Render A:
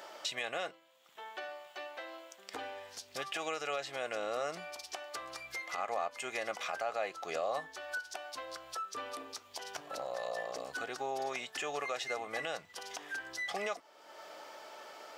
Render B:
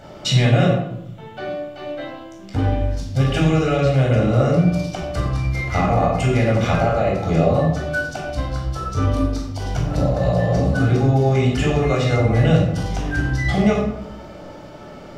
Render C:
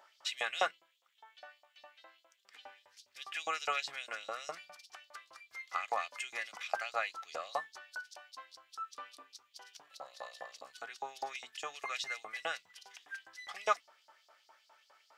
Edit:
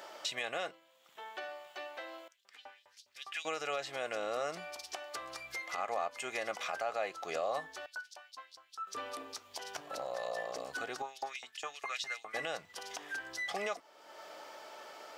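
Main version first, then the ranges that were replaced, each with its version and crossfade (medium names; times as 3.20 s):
A
2.28–3.45 s: from C
7.86–8.87 s: from C
11.02–12.34 s: from C
not used: B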